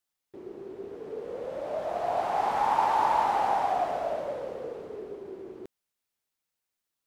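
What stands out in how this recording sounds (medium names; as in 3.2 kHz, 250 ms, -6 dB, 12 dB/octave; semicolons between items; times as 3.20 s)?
noise floor -86 dBFS; spectral tilt -2.5 dB/octave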